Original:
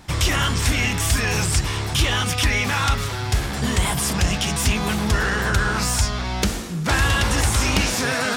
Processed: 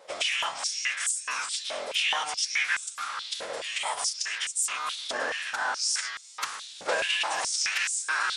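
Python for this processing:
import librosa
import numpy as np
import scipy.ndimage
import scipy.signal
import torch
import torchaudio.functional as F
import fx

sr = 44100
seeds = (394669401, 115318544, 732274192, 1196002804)

y = fx.pitch_keep_formants(x, sr, semitones=-8.5)
y = fx.wow_flutter(y, sr, seeds[0], rate_hz=2.1, depth_cents=22.0)
y = fx.filter_held_highpass(y, sr, hz=4.7, low_hz=560.0, high_hz=7800.0)
y = F.gain(torch.from_numpy(y), -8.0).numpy()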